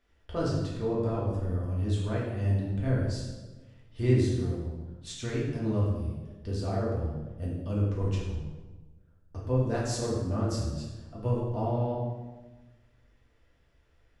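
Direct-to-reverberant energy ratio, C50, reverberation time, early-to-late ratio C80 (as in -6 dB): -6.0 dB, 1.0 dB, 1.2 s, 4.0 dB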